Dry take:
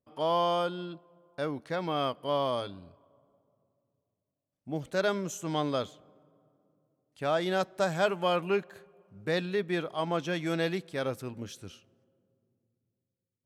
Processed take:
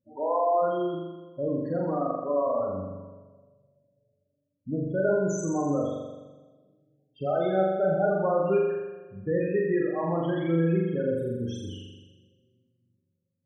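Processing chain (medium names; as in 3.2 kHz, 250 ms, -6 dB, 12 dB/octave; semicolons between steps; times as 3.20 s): band-stop 660 Hz, Q 21; in parallel at +1 dB: compression, threshold -36 dBFS, peak gain reduction 14 dB; on the sum: loudest bins only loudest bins 8; dynamic bell 1.2 kHz, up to -4 dB, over -42 dBFS, Q 0.9; on a send: flutter echo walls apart 7.2 m, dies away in 1.2 s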